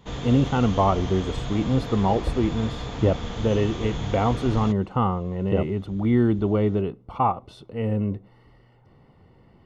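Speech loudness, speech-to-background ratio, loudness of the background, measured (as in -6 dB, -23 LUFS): -24.0 LUFS, 9.0 dB, -33.0 LUFS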